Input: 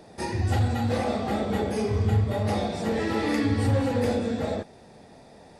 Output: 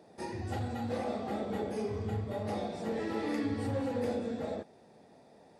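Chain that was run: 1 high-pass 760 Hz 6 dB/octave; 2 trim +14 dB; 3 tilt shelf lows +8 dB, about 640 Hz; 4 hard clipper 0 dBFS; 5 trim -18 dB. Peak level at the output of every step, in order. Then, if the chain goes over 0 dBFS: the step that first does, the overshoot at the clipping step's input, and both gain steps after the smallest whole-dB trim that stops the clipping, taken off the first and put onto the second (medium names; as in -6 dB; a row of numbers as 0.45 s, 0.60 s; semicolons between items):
-18.5 dBFS, -4.5 dBFS, -4.5 dBFS, -4.5 dBFS, -22.5 dBFS; nothing clips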